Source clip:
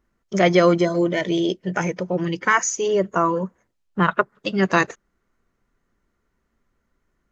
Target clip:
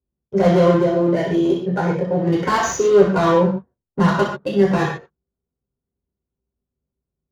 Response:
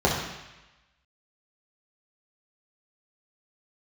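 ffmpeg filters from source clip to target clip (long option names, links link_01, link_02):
-filter_complex "[0:a]agate=range=-14dB:threshold=-41dB:ratio=16:detection=peak,asplit=3[link_01][link_02][link_03];[link_01]afade=type=out:start_time=2.27:duration=0.02[link_04];[link_02]acontrast=51,afade=type=in:start_time=2.27:duration=0.02,afade=type=out:start_time=4.36:duration=0.02[link_05];[link_03]afade=type=in:start_time=4.36:duration=0.02[link_06];[link_04][link_05][link_06]amix=inputs=3:normalize=0,asoftclip=type=hard:threshold=-15dB,adynamicsmooth=sensitivity=6:basefreq=730[link_07];[1:a]atrim=start_sample=2205,afade=type=out:start_time=0.2:duration=0.01,atrim=end_sample=9261[link_08];[link_07][link_08]afir=irnorm=-1:irlink=0,volume=-16dB"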